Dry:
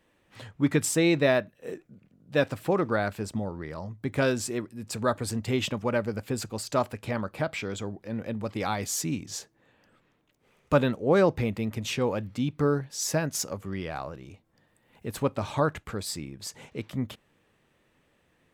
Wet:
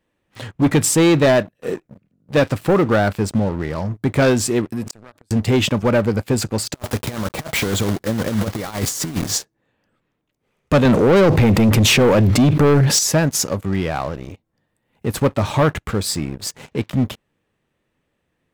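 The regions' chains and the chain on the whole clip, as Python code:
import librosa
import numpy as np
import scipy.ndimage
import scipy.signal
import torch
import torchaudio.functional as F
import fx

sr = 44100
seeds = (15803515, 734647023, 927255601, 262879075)

y = fx.chain(x, sr, fx.highpass(hz=140.0, slope=6),
    fx.gate_flip(shuts_db=-28.0, range_db=-27),
    fx.pre_swell(db_per_s=31.0), at=(4.72, 5.31))
y = fx.chain(y, sr, fx.block_float(bits=3),
    fx.peak_eq(hz=2500.0, db=-7.0, octaves=0.21),
    fx.over_compress(threshold_db=-34.0, ratio=-0.5), at=(6.74, 9.38))
y = fx.chain(y, sr, fx.highpass(hz=47.0, slope=24),
    fx.env_flatten(amount_pct=70), at=(10.85, 12.99))
y = fx.low_shelf(y, sr, hz=430.0, db=3.5)
y = fx.leveller(y, sr, passes=3)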